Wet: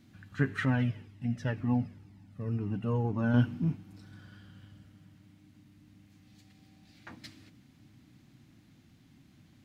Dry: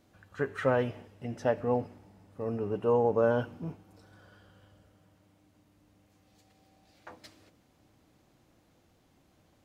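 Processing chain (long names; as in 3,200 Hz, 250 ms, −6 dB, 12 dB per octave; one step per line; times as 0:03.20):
graphic EQ with 10 bands 125 Hz +10 dB, 250 Hz +10 dB, 500 Hz −11 dB, 1,000 Hz −3 dB, 2,000 Hz +5 dB, 4,000 Hz +4 dB
0:00.65–0:03.34: flanger whose copies keep moving one way falling 2 Hz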